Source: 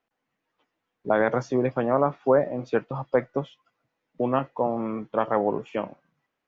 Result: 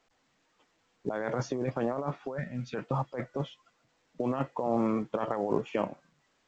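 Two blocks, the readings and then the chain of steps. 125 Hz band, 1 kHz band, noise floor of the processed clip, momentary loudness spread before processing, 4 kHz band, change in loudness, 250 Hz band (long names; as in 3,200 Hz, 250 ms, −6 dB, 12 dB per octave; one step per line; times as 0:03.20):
−2.0 dB, −7.5 dB, −72 dBFS, 10 LU, can't be measured, −7.5 dB, −4.0 dB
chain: gain on a spectral selection 0:02.37–0:02.75, 250–1,300 Hz −21 dB
compressor whose output falls as the input rises −28 dBFS, ratio −1
level −2.5 dB
A-law companding 128 kbit/s 16,000 Hz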